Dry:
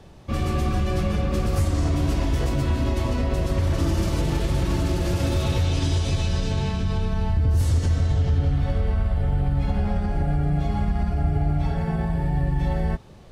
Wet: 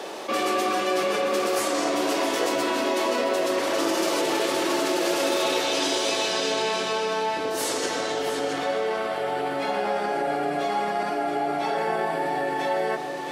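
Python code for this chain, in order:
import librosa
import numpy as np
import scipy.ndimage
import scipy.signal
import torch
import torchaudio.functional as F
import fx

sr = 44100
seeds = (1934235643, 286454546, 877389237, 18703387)

p1 = scipy.signal.sosfilt(scipy.signal.butter(4, 360.0, 'highpass', fs=sr, output='sos'), x)
p2 = p1 + fx.echo_single(p1, sr, ms=670, db=-11.0, dry=0)
p3 = fx.env_flatten(p2, sr, amount_pct=50)
y = p3 * librosa.db_to_amplitude(6.0)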